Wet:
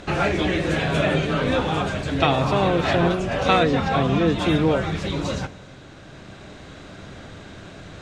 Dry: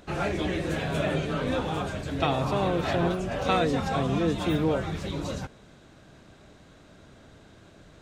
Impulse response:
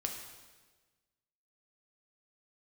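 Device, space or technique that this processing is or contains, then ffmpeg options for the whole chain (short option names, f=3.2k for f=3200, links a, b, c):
ducked reverb: -filter_complex "[0:a]lowpass=8.5k,asplit=3[a][b][c];[1:a]atrim=start_sample=2205[d];[b][d]afir=irnorm=-1:irlink=0[e];[c]apad=whole_len=353300[f];[e][f]sidechaincompress=threshold=-40dB:ratio=8:attack=48:release=1360,volume=2dB[g];[a][g]amix=inputs=2:normalize=0,equalizer=f=2.3k:t=o:w=1.7:g=3,asettb=1/sr,asplit=3[h][i][j];[h]atrim=end=3.634[k];[i]atrim=start=3.63:end=4.39,asetpts=PTS-STARTPTS,afade=t=in:d=0.004:c=qsin,afade=t=out:st=0.756:d=0.004:c=qsin,acrossover=split=4900[l][m];[m]acompressor=threshold=-56dB:ratio=4:attack=1:release=60[n];[l][n]amix=inputs=2:normalize=0[o];[j]atrim=start=4.386[p];[k][o]acrossfade=d=0.004:c1=hsin:c2=qsin[q];[q][p]acrossfade=d=0.004:c1=qsin:c2=hsin,volume=4.5dB"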